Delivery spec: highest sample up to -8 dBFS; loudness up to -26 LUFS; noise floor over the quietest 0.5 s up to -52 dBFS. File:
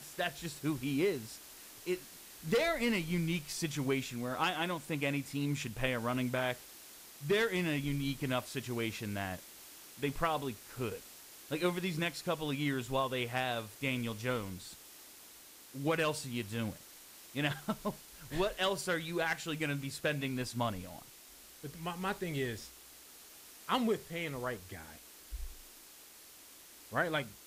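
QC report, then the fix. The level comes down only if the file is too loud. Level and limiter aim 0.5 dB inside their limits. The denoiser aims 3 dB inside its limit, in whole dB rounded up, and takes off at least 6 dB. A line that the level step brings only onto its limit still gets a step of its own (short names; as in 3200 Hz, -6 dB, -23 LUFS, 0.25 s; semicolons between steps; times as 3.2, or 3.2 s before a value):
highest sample -18.0 dBFS: OK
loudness -35.5 LUFS: OK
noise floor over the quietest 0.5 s -56 dBFS: OK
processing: none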